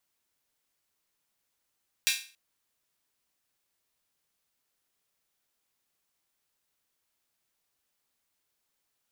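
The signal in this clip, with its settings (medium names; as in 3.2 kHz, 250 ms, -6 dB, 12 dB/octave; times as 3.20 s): open hi-hat length 0.28 s, high-pass 2.5 kHz, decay 0.38 s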